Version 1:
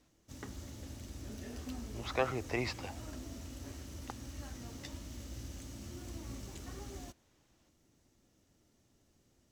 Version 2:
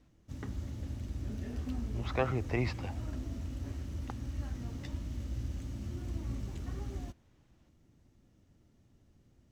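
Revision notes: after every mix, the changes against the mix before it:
master: add bass and treble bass +9 dB, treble −8 dB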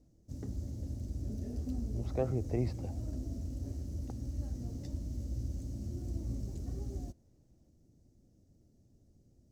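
speech: add high-frequency loss of the air 160 metres
master: add flat-topped bell 1,800 Hz −15.5 dB 2.3 octaves

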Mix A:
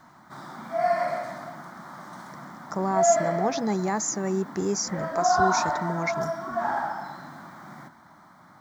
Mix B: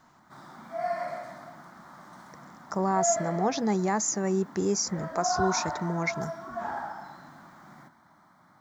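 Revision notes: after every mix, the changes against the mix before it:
background −7.0 dB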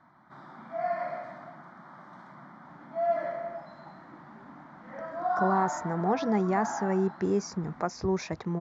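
speech: entry +2.65 s
master: add low-pass filter 2,900 Hz 12 dB per octave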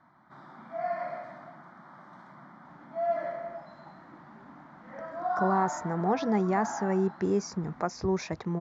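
reverb: off

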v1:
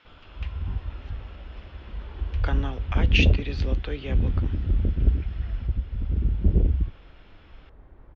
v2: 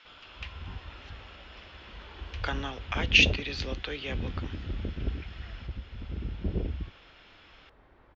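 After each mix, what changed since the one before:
master: add spectral tilt +3 dB per octave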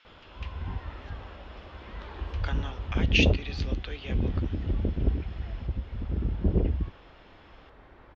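speech −5.0 dB
background +6.5 dB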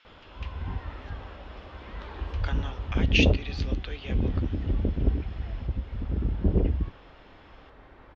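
background: send on

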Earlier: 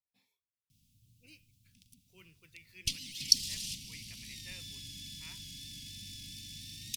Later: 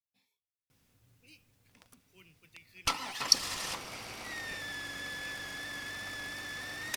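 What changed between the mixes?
background: remove inverse Chebyshev band-stop filter 450–1,500 Hz, stop band 50 dB
master: add low-shelf EQ 330 Hz −2.5 dB

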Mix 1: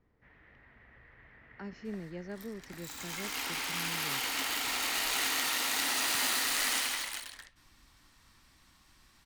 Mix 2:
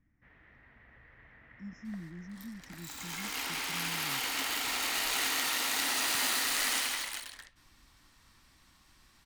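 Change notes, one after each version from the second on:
speech: add linear-phase brick-wall band-stop 340–5,100 Hz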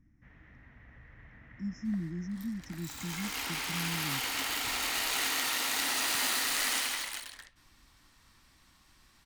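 speech +8.0 dB

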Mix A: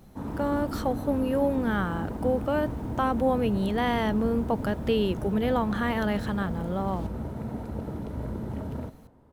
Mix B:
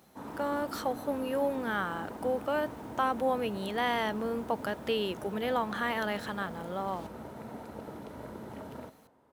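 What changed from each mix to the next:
master: add high-pass filter 670 Hz 6 dB per octave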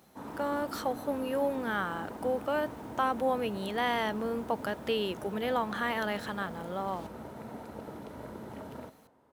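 nothing changed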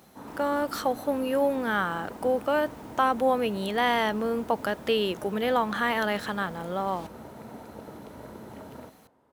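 speech +5.5 dB

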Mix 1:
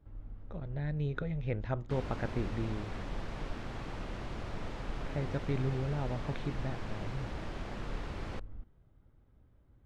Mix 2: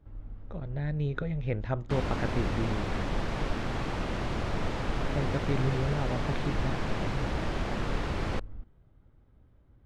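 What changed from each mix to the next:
speech +3.5 dB
background +9.5 dB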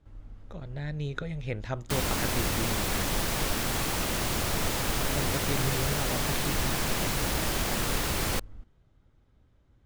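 speech −3.5 dB
master: remove head-to-tape spacing loss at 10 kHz 28 dB

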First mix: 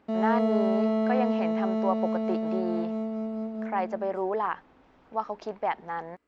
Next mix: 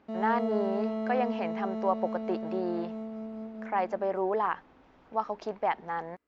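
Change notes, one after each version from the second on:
background −7.0 dB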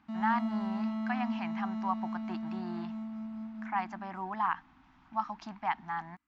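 master: add Chebyshev band-stop filter 250–920 Hz, order 2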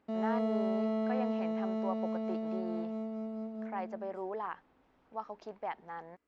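speech −10.0 dB
master: remove Chebyshev band-stop filter 250–920 Hz, order 2

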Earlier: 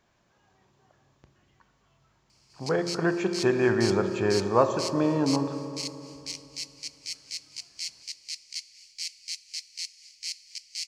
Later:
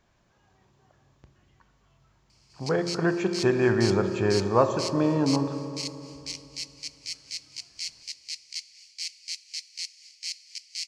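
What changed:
speech: add low-shelf EQ 99 Hz +9 dB
background: add meter weighting curve A

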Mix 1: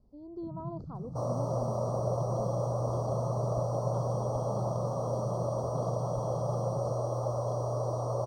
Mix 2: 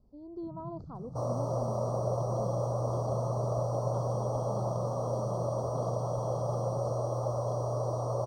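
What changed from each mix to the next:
first sound −4.0 dB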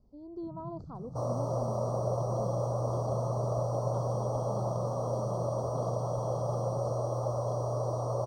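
speech: remove high-frequency loss of the air 53 metres

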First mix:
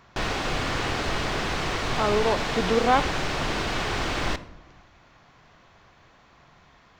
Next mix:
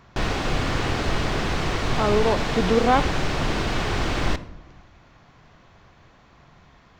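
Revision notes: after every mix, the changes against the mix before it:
master: add low-shelf EQ 370 Hz +6.5 dB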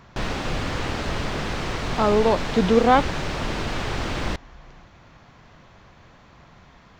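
speech +4.5 dB
reverb: off

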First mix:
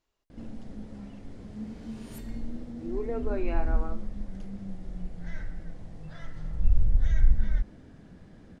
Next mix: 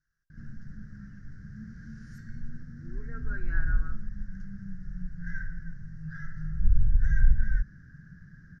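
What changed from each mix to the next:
second sound: add high-pass filter 1,400 Hz
master: add drawn EQ curve 100 Hz 0 dB, 150 Hz +8 dB, 240 Hz −11 dB, 620 Hz −26 dB, 920 Hz −27 dB, 1,600 Hz +13 dB, 2,400 Hz −20 dB, 3,400 Hz −21 dB, 5,700 Hz −1 dB, 8,600 Hz −21 dB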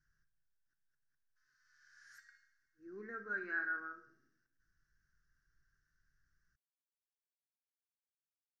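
speech: send +11.0 dB
first sound: muted
second sound: send off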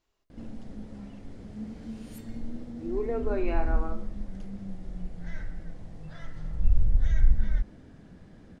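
first sound: unmuted
master: remove drawn EQ curve 100 Hz 0 dB, 150 Hz +8 dB, 240 Hz −11 dB, 620 Hz −26 dB, 920 Hz −27 dB, 1,600 Hz +13 dB, 2,400 Hz −20 dB, 3,400 Hz −21 dB, 5,700 Hz −1 dB, 8,600 Hz −21 dB

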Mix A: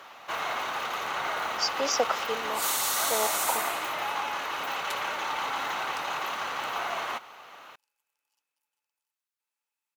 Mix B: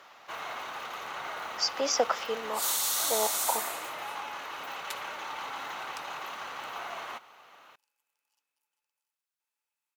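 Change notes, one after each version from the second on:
first sound −7.0 dB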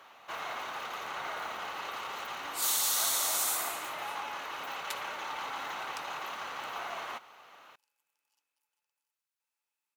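speech: muted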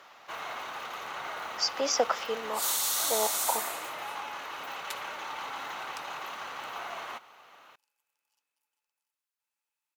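speech: unmuted

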